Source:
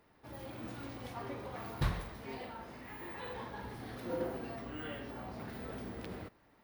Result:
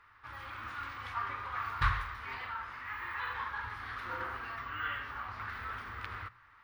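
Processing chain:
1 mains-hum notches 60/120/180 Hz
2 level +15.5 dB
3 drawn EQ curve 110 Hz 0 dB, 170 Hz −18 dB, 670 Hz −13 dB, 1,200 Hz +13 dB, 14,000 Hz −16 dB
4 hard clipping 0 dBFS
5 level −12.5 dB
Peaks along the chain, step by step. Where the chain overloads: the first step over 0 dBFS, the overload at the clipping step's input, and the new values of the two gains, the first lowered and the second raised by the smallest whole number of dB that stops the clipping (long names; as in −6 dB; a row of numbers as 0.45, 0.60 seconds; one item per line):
−20.5, −5.0, −3.0, −3.0, −15.5 dBFS
no step passes full scale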